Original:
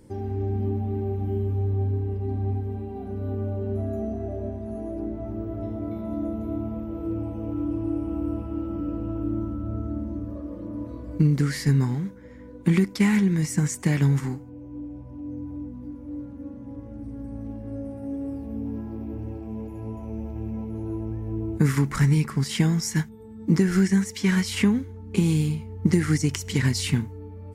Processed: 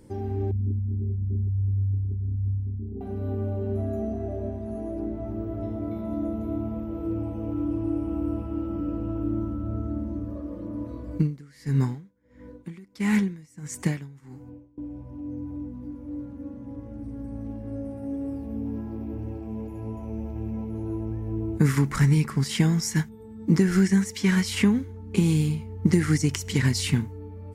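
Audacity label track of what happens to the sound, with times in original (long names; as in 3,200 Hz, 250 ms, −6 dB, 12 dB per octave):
0.510000	3.010000	spectral envelope exaggerated exponent 3
11.150000	14.780000	tremolo with a sine in dB 1.5 Hz, depth 26 dB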